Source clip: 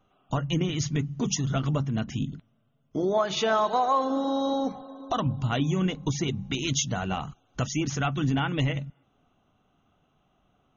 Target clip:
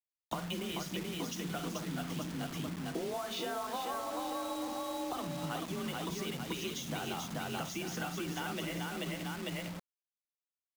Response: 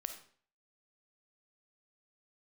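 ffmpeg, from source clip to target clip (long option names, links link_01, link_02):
-filter_complex "[0:a]acrossover=split=110|260|710[link_01][link_02][link_03][link_04];[link_01]acompressor=threshold=-36dB:ratio=4[link_05];[link_02]acompressor=threshold=-39dB:ratio=4[link_06];[link_03]acompressor=threshold=-34dB:ratio=4[link_07];[link_04]acompressor=threshold=-30dB:ratio=4[link_08];[link_05][link_06][link_07][link_08]amix=inputs=4:normalize=0,afreqshift=35,highpass=frequency=74:poles=1,bandreject=frequency=60:width_type=h:width=6,bandreject=frequency=120:width_type=h:width=6,bandreject=frequency=180:width_type=h:width=6,bandreject=frequency=240:width_type=h:width=6,bandreject=frequency=300:width_type=h:width=6,bandreject=frequency=360:width_type=h:width=6,aecho=1:1:51|261|435|886:0.282|0.106|0.708|0.316,asplit=2[link_09][link_10];[1:a]atrim=start_sample=2205[link_11];[link_10][link_11]afir=irnorm=-1:irlink=0,volume=-7dB[link_12];[link_09][link_12]amix=inputs=2:normalize=0,acompressor=threshold=-38dB:ratio=12,lowpass=5500,acrusher=bits=7:mix=0:aa=0.000001,volume=3dB"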